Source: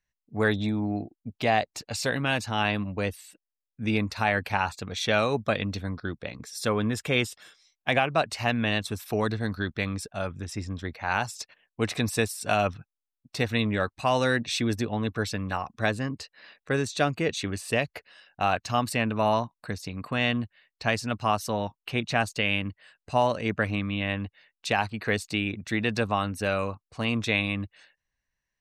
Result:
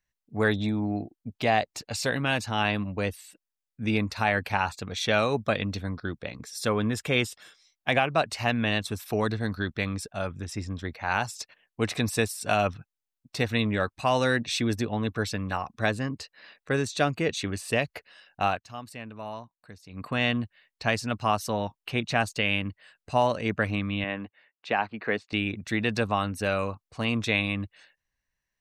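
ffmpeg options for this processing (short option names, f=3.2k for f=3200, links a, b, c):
-filter_complex "[0:a]asettb=1/sr,asplit=3[a][b][c];[a]atrim=end=24.044[d];[b]atrim=start=24.04:end=25.33,asetpts=PTS-STARTPTS,afade=t=in:d=0.004:c=qsin,afade=t=out:st=1.286:d=0.004:c=qsin,highpass=210,lowpass=2.4k[e];[c]atrim=start=25.326[f];[d][e]acrossfade=d=0.004:c1=hsin:c2=qsin[g];[g][f]acrossfade=d=0.004:c1=qsin:c2=hsin,asplit=3[h][i][j];[h]atrim=end=18.62,asetpts=PTS-STARTPTS,afade=t=out:st=18.47:d=0.15:silence=0.199526[k];[i]atrim=start=18.62:end=19.88,asetpts=PTS-STARTPTS,volume=-14dB[l];[j]atrim=start=19.88,asetpts=PTS-STARTPTS,afade=t=in:d=0.15:silence=0.199526[m];[k][l][m]concat=n=3:v=0:a=1"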